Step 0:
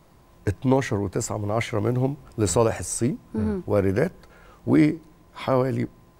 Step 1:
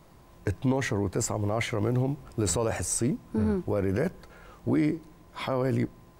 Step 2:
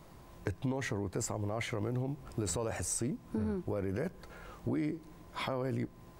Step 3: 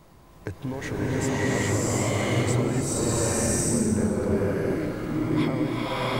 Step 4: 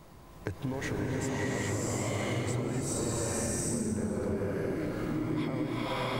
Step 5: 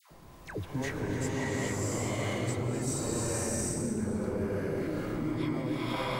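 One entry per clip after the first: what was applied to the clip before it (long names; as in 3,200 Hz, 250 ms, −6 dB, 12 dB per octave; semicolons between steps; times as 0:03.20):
brickwall limiter −16.5 dBFS, peak gain reduction 10.5 dB
downward compressor 2.5 to 1, threshold −35 dBFS, peak gain reduction 9.5 dB
slow-attack reverb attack 730 ms, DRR −9.5 dB; level +2 dB
downward compressor 4 to 1, threshold −30 dBFS, peak gain reduction 9.5 dB
all-pass dispersion lows, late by 111 ms, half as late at 950 Hz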